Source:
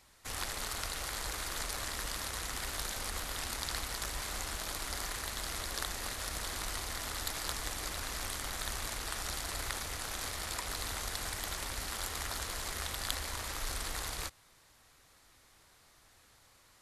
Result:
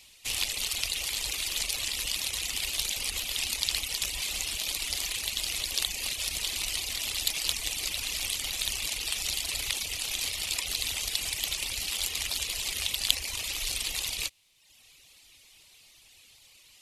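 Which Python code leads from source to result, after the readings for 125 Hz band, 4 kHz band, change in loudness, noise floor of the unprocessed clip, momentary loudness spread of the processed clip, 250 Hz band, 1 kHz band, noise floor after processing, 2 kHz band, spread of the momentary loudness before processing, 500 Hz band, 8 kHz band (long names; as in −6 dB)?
−2.5 dB, +10.5 dB, +8.0 dB, −64 dBFS, 2 LU, −3.0 dB, −6.0 dB, −58 dBFS, +5.0 dB, 1 LU, −3.5 dB, +7.5 dB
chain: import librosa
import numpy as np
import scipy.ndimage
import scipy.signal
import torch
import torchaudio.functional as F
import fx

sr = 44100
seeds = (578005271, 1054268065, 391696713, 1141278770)

y = fx.high_shelf_res(x, sr, hz=2000.0, db=9.5, q=3.0)
y = fx.dereverb_blind(y, sr, rt60_s=0.93)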